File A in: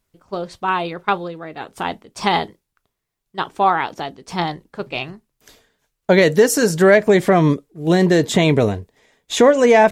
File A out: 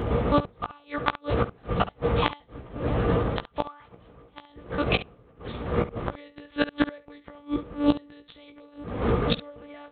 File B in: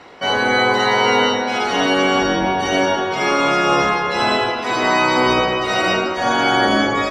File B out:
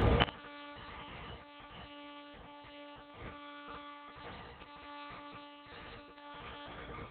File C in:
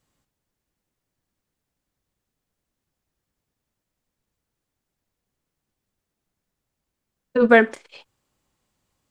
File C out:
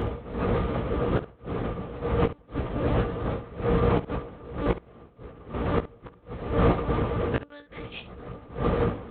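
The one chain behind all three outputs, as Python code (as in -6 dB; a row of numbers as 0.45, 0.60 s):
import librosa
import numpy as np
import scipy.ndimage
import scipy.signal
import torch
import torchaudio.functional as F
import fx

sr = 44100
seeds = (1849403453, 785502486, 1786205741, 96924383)

y = fx.tracing_dist(x, sr, depth_ms=0.12)
y = fx.dmg_wind(y, sr, seeds[0], corner_hz=390.0, level_db=-24.0)
y = fx.lpc_monotone(y, sr, seeds[1], pitch_hz=290.0, order=8)
y = scipy.signal.sosfilt(scipy.signal.butter(2, 46.0, 'highpass', fs=sr, output='sos'), y)
y = fx.high_shelf(y, sr, hz=2500.0, db=8.5)
y = fx.small_body(y, sr, hz=(470.0, 1200.0), ring_ms=60, db=12)
y = fx.gate_flip(y, sr, shuts_db=-11.0, range_db=-36)
y = fx.peak_eq(y, sr, hz=450.0, db=-5.0, octaves=0.98)
y = fx.room_early_taps(y, sr, ms=(17, 69), db=(-6.5, -14.5))
y = F.gain(torch.from_numpy(y), 2.0).numpy()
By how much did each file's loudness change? 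-11.0, -27.5, -10.5 LU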